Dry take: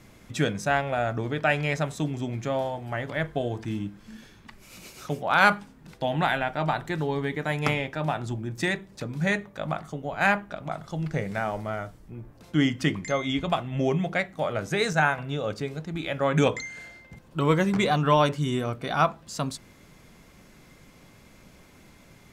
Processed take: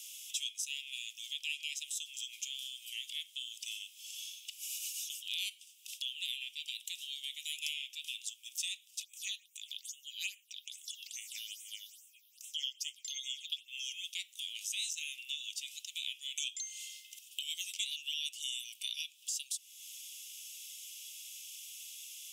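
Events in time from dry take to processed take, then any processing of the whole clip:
0:09.03–0:13.68: all-pass phaser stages 6, 2.4 Hz, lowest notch 570–4,600 Hz
whole clip: Butterworth high-pass 2,800 Hz 72 dB per octave; parametric band 4,300 Hz −13.5 dB 0.38 octaves; downward compressor 3 to 1, threshold −57 dBFS; level +17 dB

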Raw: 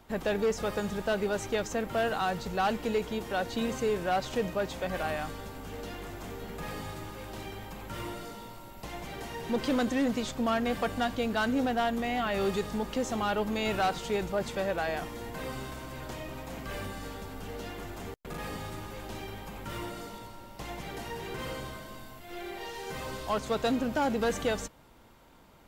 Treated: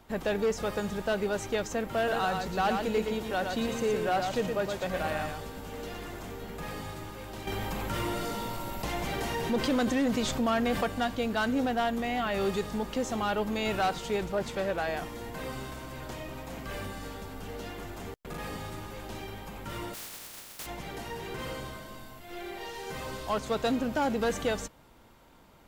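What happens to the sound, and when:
0:01.96–0:06.21: single-tap delay 116 ms −5 dB
0:07.47–0:10.84: envelope flattener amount 50%
0:14.19–0:14.87: highs frequency-modulated by the lows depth 0.15 ms
0:19.93–0:20.65: compressing power law on the bin magnitudes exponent 0.1

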